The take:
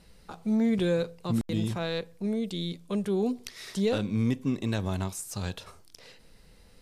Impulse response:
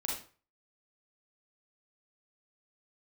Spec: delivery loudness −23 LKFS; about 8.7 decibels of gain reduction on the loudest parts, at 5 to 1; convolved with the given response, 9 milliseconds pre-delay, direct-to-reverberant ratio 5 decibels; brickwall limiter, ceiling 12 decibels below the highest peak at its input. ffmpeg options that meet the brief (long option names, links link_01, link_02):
-filter_complex "[0:a]acompressor=threshold=-32dB:ratio=5,alimiter=level_in=7.5dB:limit=-24dB:level=0:latency=1,volume=-7.5dB,asplit=2[link_01][link_02];[1:a]atrim=start_sample=2205,adelay=9[link_03];[link_02][link_03]afir=irnorm=-1:irlink=0,volume=-8.5dB[link_04];[link_01][link_04]amix=inputs=2:normalize=0,volume=16.5dB"